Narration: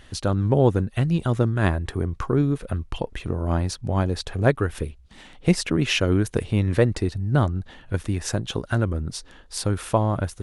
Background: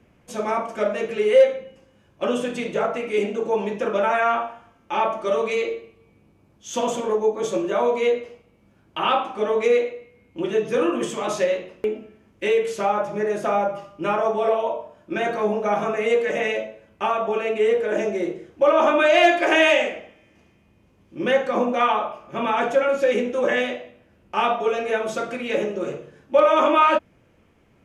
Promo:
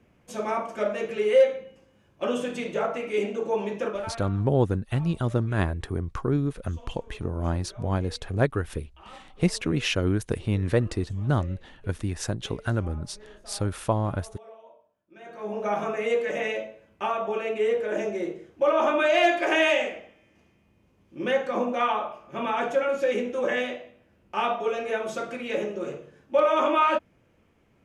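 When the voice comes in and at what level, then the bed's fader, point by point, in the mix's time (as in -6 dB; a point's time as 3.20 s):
3.95 s, -4.0 dB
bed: 3.86 s -4 dB
4.32 s -27 dB
15.12 s -27 dB
15.61 s -5 dB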